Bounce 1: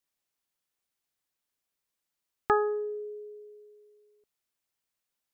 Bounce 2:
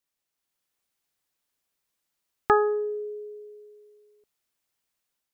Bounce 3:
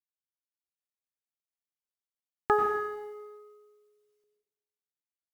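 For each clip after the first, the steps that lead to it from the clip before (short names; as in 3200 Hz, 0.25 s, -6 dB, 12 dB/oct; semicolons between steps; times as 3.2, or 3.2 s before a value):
AGC gain up to 4.5 dB
G.711 law mismatch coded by A; plate-style reverb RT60 0.96 s, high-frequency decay 0.95×, pre-delay 80 ms, DRR 3 dB; gain -4.5 dB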